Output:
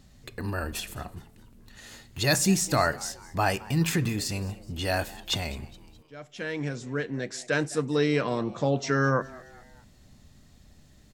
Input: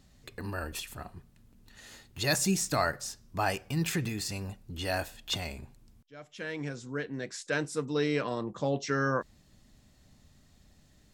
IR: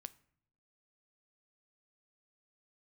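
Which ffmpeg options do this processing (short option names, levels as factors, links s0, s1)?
-filter_complex "[0:a]asplit=4[s0][s1][s2][s3];[s1]adelay=209,afreqshift=120,volume=0.0891[s4];[s2]adelay=418,afreqshift=240,volume=0.0427[s5];[s3]adelay=627,afreqshift=360,volume=0.0204[s6];[s0][s4][s5][s6]amix=inputs=4:normalize=0,asplit=2[s7][s8];[1:a]atrim=start_sample=2205,lowshelf=f=360:g=5.5[s9];[s8][s9]afir=irnorm=-1:irlink=0,volume=1.06[s10];[s7][s10]amix=inputs=2:normalize=0"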